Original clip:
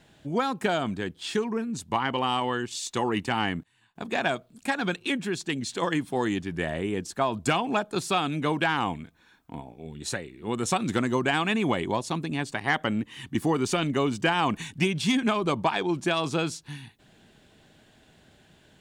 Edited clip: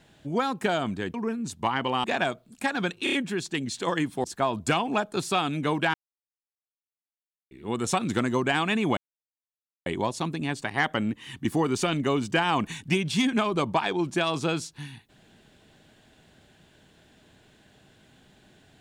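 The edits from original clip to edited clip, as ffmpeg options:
-filter_complex "[0:a]asplit=10[s0][s1][s2][s3][s4][s5][s6][s7][s8][s9];[s0]atrim=end=1.142[s10];[s1]atrim=start=1.428:end=2.332[s11];[s2]atrim=start=4.078:end=5.112[s12];[s3]atrim=start=5.078:end=5.112[s13];[s4]atrim=start=5.078:end=5.112[s14];[s5]atrim=start=5.078:end=6.192[s15];[s6]atrim=start=7.028:end=8.73,asetpts=PTS-STARTPTS,afade=t=out:st=1.698:d=0.004:c=hsin[s16];[s7]atrim=start=8.73:end=10.3,asetpts=PTS-STARTPTS,volume=0[s17];[s8]atrim=start=10.3:end=11.76,asetpts=PTS-STARTPTS,afade=t=in:d=0.004:c=hsin,afade=t=out:st=1.456:d=0.004:c=hsin,apad=pad_dur=0.89[s18];[s9]atrim=start=11.76,asetpts=PTS-STARTPTS,afade=t=in:d=0.004:c=hsin[s19];[s10][s11]acrossfade=d=0.004:c1=hsin:c2=hsin[s20];[s20][s12]acrossfade=d=0.004:c1=hsin:c2=hsin[s21];[s21][s13]acrossfade=d=0.004:c1=hsin:c2=hsin[s22];[s22][s14]acrossfade=d=0.004:c1=hsin:c2=hsin[s23];[s23][s15]acrossfade=d=0.004:c1=hsin:c2=hsin[s24];[s16][s17][s18][s19]concat=n=4:v=0:a=1[s25];[s24][s25]acrossfade=d=0.004:c1=hsin:c2=hsin"

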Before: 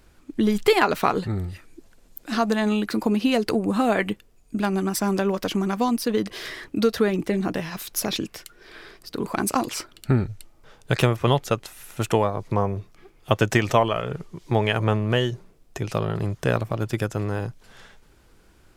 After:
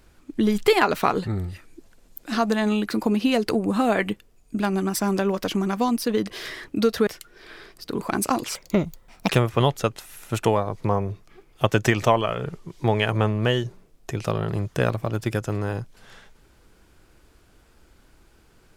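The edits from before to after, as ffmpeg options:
-filter_complex "[0:a]asplit=4[s0][s1][s2][s3];[s0]atrim=end=7.072[s4];[s1]atrim=start=8.318:end=9.804[s5];[s2]atrim=start=9.8:end=10.96,asetpts=PTS-STARTPTS,asetrate=69237,aresample=44100,atrim=end_sample=32583,asetpts=PTS-STARTPTS[s6];[s3]atrim=start=10.956[s7];[s4][s5]acrossfade=d=0.004:c1=hsin:c2=hsin[s8];[s8][s6]acrossfade=d=0.004:c1=hsin:c2=hsin[s9];[s9][s7]acrossfade=d=0.004:c1=hsin:c2=hsin"

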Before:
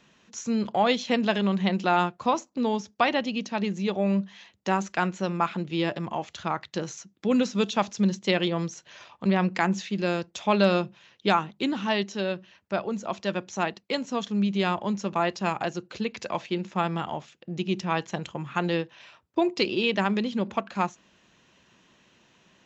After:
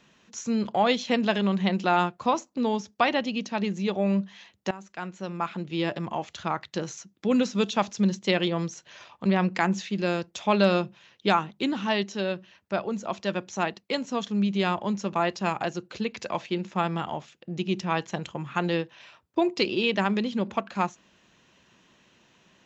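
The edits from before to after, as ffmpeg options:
-filter_complex "[0:a]asplit=2[s0][s1];[s0]atrim=end=4.71,asetpts=PTS-STARTPTS,afade=t=out:st=4.706:d=0.004:c=hsin:silence=0.105925[s2];[s1]atrim=start=4.71,asetpts=PTS-STARTPTS,afade=t=in:d=1.27:silence=0.105925[s3];[s2][s3]concat=n=2:v=0:a=1"

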